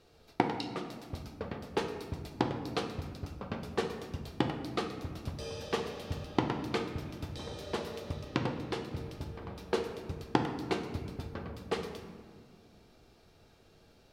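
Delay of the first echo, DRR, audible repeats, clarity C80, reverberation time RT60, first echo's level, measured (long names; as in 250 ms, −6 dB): no echo audible, 4.0 dB, no echo audible, 9.0 dB, 1.8 s, no echo audible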